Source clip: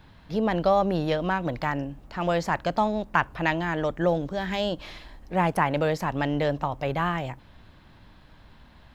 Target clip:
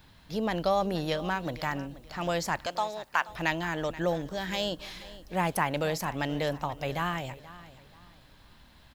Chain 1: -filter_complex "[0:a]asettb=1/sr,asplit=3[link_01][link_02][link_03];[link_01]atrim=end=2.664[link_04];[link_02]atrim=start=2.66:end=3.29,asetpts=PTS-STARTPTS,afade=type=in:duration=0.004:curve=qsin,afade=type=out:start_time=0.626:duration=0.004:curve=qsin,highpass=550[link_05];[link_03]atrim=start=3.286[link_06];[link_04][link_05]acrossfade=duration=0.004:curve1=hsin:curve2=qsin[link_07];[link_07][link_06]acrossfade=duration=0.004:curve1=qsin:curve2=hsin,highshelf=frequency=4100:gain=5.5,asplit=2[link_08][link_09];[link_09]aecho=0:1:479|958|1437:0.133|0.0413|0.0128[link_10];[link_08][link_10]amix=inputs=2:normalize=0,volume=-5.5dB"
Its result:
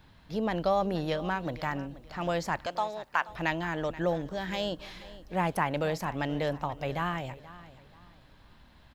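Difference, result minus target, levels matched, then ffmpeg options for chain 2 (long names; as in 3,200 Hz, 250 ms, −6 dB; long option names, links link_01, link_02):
8,000 Hz band −6.5 dB
-filter_complex "[0:a]asettb=1/sr,asplit=3[link_01][link_02][link_03];[link_01]atrim=end=2.664[link_04];[link_02]atrim=start=2.66:end=3.29,asetpts=PTS-STARTPTS,afade=type=in:duration=0.004:curve=qsin,afade=type=out:start_time=0.626:duration=0.004:curve=qsin,highpass=550[link_05];[link_03]atrim=start=3.286[link_06];[link_04][link_05]acrossfade=duration=0.004:curve1=hsin:curve2=qsin[link_07];[link_07][link_06]acrossfade=duration=0.004:curve1=qsin:curve2=hsin,highshelf=frequency=4100:gain=15,asplit=2[link_08][link_09];[link_09]aecho=0:1:479|958|1437:0.133|0.0413|0.0128[link_10];[link_08][link_10]amix=inputs=2:normalize=0,volume=-5.5dB"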